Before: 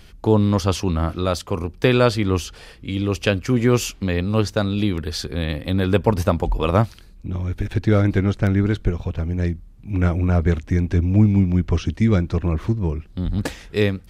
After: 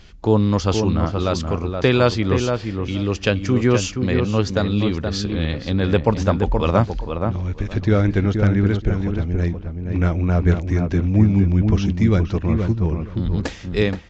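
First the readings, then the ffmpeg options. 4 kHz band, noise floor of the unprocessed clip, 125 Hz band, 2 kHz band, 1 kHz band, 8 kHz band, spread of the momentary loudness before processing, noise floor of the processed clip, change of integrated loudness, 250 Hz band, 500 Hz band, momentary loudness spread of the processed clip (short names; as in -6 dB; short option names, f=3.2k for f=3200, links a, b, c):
+0.5 dB, -45 dBFS, +1.0 dB, +0.5 dB, +1.0 dB, -0.5 dB, 9 LU, -34 dBFS, +1.0 dB, +1.0 dB, +1.0 dB, 7 LU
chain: -filter_complex "[0:a]asplit=2[a][b];[b]adelay=474,lowpass=f=1.7k:p=1,volume=-5dB,asplit=2[c][d];[d]adelay=474,lowpass=f=1.7k:p=1,volume=0.18,asplit=2[e][f];[f]adelay=474,lowpass=f=1.7k:p=1,volume=0.18[g];[a][c][e][g]amix=inputs=4:normalize=0" -ar 16000 -c:a libvorbis -b:a 64k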